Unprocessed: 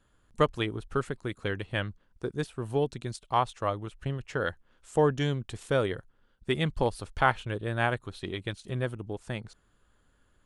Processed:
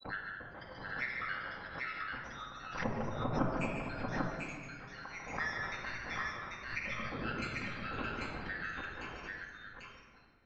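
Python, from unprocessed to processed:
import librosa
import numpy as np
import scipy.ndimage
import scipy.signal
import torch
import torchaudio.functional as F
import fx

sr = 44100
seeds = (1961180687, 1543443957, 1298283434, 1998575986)

y = fx.band_shuffle(x, sr, order='4321')
y = scipy.signal.sosfilt(scipy.signal.butter(4, 1200.0, 'lowpass', fs=sr, output='sos'), y)
y = fx.granulator(y, sr, seeds[0], grain_ms=206.0, per_s=10.0, spray_ms=493.0, spread_st=7)
y = fx.echo_multitap(y, sr, ms=(146, 229, 792), db=(-6.5, -14.0, -3.0))
y = fx.room_shoebox(y, sr, seeds[1], volume_m3=1400.0, walls='mixed', distance_m=2.1)
y = fx.pre_swell(y, sr, db_per_s=87.0)
y = y * librosa.db_to_amplitude(15.5)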